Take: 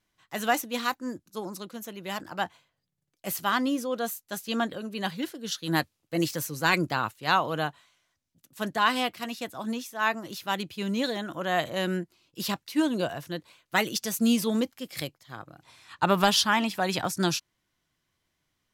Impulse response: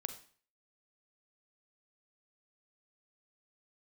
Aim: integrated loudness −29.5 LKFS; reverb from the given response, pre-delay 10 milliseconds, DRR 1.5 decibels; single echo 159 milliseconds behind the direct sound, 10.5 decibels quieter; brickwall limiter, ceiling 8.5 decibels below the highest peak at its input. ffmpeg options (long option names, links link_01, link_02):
-filter_complex "[0:a]alimiter=limit=-17dB:level=0:latency=1,aecho=1:1:159:0.299,asplit=2[link_01][link_02];[1:a]atrim=start_sample=2205,adelay=10[link_03];[link_02][link_03]afir=irnorm=-1:irlink=0,volume=0dB[link_04];[link_01][link_04]amix=inputs=2:normalize=0,volume=-1dB"